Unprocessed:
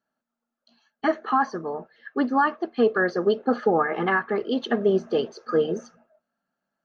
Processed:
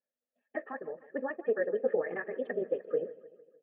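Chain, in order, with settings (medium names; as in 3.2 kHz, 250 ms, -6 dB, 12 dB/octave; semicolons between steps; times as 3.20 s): cascade formant filter e; feedback delay 286 ms, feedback 55%, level -18 dB; granular stretch 0.53×, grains 41 ms; trim +2 dB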